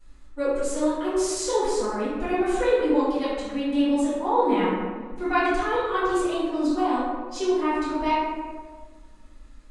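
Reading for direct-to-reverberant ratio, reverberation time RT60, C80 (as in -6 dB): -16.0 dB, 1.6 s, 1.0 dB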